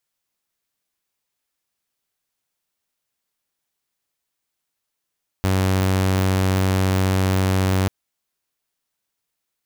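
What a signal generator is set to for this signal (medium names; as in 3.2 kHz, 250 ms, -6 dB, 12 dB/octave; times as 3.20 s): tone saw 94.6 Hz -14 dBFS 2.44 s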